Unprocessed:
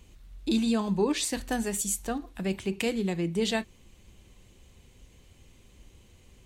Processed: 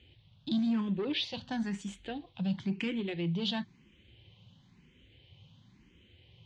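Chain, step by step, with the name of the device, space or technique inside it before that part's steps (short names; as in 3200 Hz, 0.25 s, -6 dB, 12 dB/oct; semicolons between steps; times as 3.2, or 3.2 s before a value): barber-pole phaser into a guitar amplifier (endless phaser +0.98 Hz; soft clip -25.5 dBFS, distortion -14 dB; speaker cabinet 96–4400 Hz, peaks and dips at 110 Hz +8 dB, 160 Hz +8 dB, 440 Hz -6 dB, 650 Hz -6 dB, 1200 Hz -6 dB, 3200 Hz +7 dB)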